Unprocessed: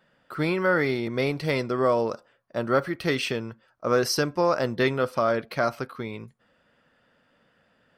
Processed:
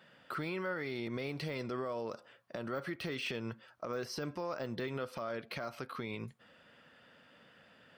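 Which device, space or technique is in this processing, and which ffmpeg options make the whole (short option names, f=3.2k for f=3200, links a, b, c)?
broadcast voice chain: -af "highpass=74,deesser=0.95,acompressor=threshold=-34dB:ratio=4,equalizer=f=3k:t=o:w=1.3:g=5,alimiter=level_in=7dB:limit=-24dB:level=0:latency=1:release=123,volume=-7dB,volume=2dB"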